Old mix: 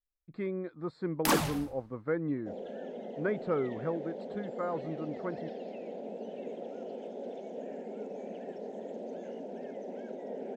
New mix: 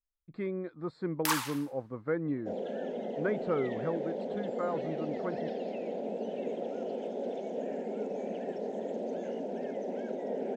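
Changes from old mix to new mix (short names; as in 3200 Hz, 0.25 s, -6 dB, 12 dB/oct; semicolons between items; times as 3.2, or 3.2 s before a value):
first sound: add Chebyshev high-pass 900 Hz, order 5; second sound +5.0 dB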